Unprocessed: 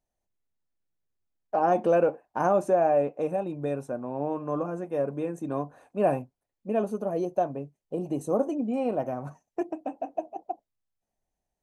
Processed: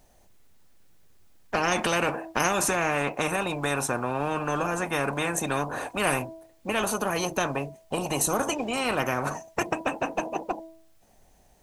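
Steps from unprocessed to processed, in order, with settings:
hum removal 325.5 Hz, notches 3
every bin compressed towards the loudest bin 4 to 1
level +1 dB

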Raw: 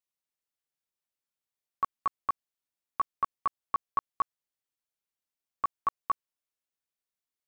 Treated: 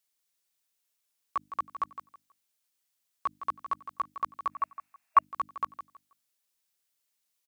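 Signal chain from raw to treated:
played backwards from end to start
high-pass filter 65 Hz
high-shelf EQ 2,400 Hz +9.5 dB
mains-hum notches 50/100/150/200/250/300 Hz
brickwall limiter −25.5 dBFS, peak gain reduction 8 dB
repeating echo 161 ms, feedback 23%, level −11 dB
gain on a spectral selection 0:04.51–0:05.24, 640–2,800 Hz +12 dB
level +3.5 dB

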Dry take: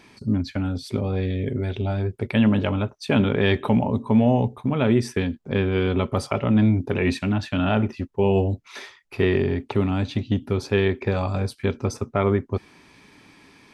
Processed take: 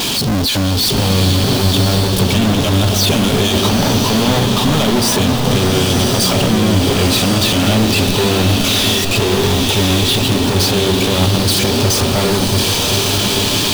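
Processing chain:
converter with a step at zero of −31.5 dBFS
high shelf with overshoot 2,500 Hz +7.5 dB, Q 3
brickwall limiter −12 dBFS, peak gain reduction 9.5 dB
leveller curve on the samples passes 5
slow-attack reverb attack 1,100 ms, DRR 1.5 dB
level −1 dB

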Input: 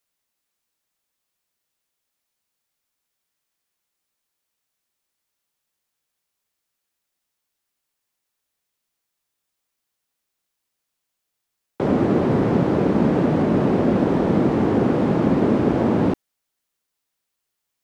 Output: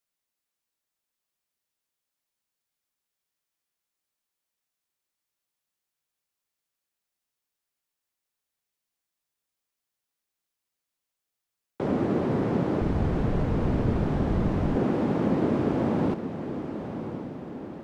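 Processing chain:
feedback delay with all-pass diffusion 1,038 ms, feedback 56%, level −9.5 dB
0:12.81–0:14.76: frequency shifter −130 Hz
level −7 dB

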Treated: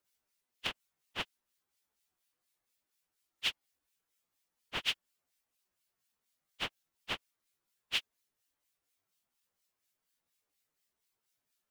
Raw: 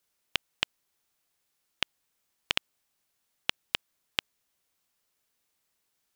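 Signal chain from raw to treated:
time stretch by phase vocoder 1.9×
two-band tremolo in antiphase 4.2 Hz, depth 70%, crossover 1,800 Hz

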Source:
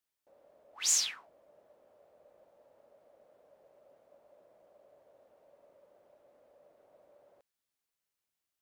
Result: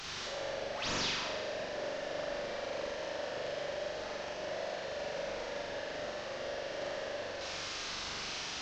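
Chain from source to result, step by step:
linear delta modulator 32 kbit/s, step −37.5 dBFS
flutter between parallel walls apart 7.2 metres, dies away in 1.3 s

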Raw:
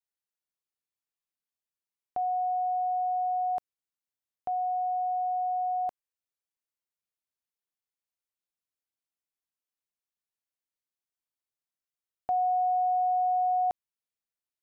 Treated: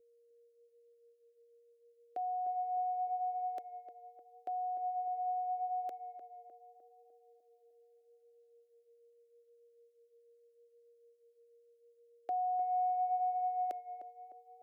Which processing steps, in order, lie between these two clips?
Chebyshev high-pass filter 370 Hz, order 2
steady tone 470 Hz −64 dBFS
phaser with its sweep stopped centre 400 Hz, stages 4
on a send: tape delay 302 ms, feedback 63%, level −8 dB, low-pass 1,000 Hz

